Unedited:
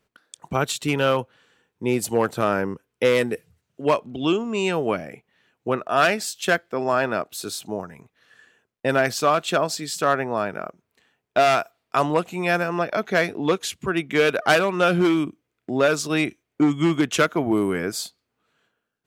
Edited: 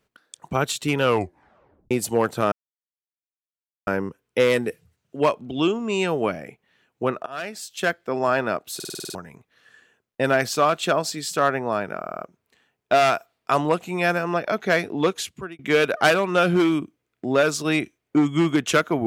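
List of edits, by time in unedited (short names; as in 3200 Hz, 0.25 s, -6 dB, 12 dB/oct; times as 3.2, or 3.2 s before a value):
1.02 tape stop 0.89 s
2.52 insert silence 1.35 s
5.91–6.75 fade in, from -23.5 dB
7.4 stutter in place 0.05 s, 8 plays
10.64 stutter 0.05 s, 5 plays
13.63–14.04 fade out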